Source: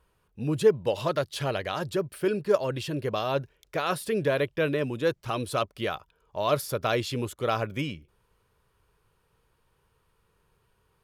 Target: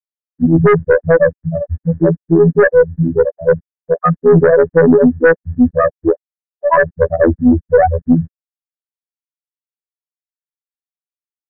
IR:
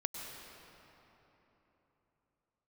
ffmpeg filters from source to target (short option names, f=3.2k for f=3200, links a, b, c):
-af "aemphasis=mode=reproduction:type=bsi,bandreject=f=50:t=h:w=6,bandreject=f=100:t=h:w=6,bandreject=f=150:t=h:w=6,afftfilt=real='re*gte(hypot(re,im),0.398)':imag='im*gte(hypot(re,im),0.398)':win_size=1024:overlap=0.75,aecho=1:1:3.9:0.6,afftfilt=real='hypot(re,im)*cos(PI*b)':imag='0':win_size=2048:overlap=0.75,aeval=exprs='(tanh(12.6*val(0)+0.15)-tanh(0.15))/12.6':c=same,lowpass=f=1.8k:t=q:w=9.4,asetrate=42336,aresample=44100,alimiter=level_in=24.5dB:limit=-1dB:release=50:level=0:latency=1,volume=-1dB"